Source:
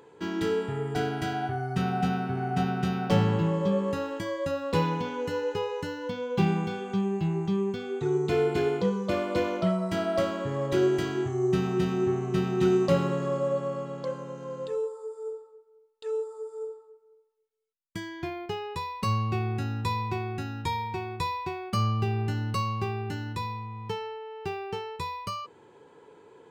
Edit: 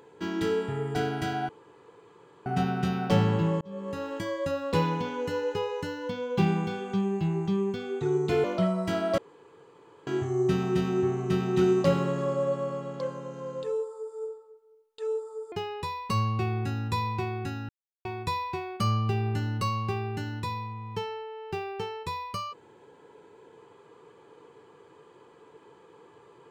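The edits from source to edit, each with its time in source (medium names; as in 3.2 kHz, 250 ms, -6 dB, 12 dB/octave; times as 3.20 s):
1.49–2.46 s: room tone
3.61–4.18 s: fade in
8.44–9.48 s: delete
10.22–11.11 s: room tone
16.56–18.45 s: delete
20.62–20.98 s: mute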